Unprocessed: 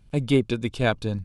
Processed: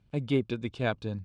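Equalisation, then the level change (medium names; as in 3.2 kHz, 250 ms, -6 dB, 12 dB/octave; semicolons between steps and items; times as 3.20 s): high-pass 56 Hz; Bessel low-pass 4.3 kHz, order 2; -6.5 dB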